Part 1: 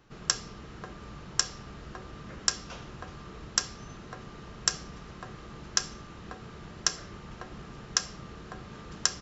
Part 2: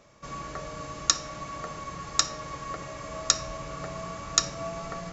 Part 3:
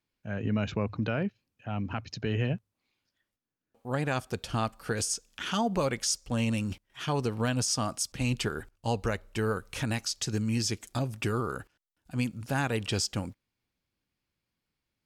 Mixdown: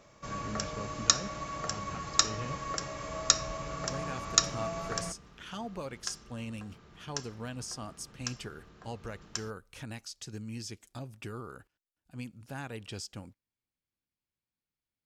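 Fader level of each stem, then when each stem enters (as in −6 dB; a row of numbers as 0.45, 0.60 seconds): −11.0, −1.0, −11.5 decibels; 0.30, 0.00, 0.00 seconds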